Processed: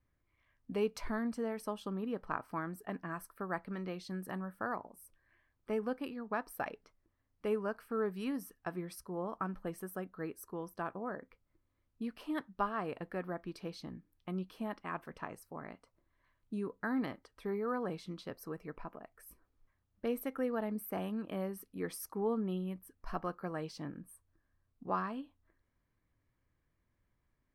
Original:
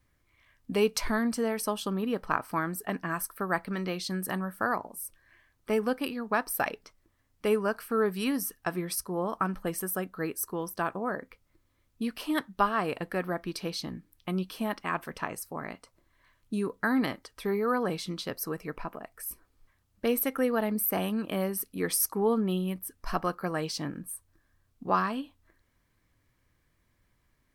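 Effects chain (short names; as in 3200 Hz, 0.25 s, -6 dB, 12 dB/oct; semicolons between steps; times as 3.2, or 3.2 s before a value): high shelf 2800 Hz -11.5 dB; gain -7.5 dB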